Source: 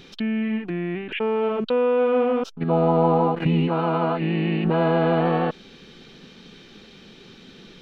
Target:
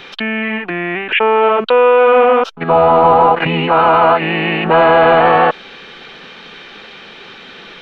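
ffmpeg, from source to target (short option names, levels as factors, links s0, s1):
-filter_complex "[0:a]acrossover=split=570 3100:gain=0.126 1 0.158[s0][s1][s2];[s0][s1][s2]amix=inputs=3:normalize=0,apsyclip=12.6,volume=0.668"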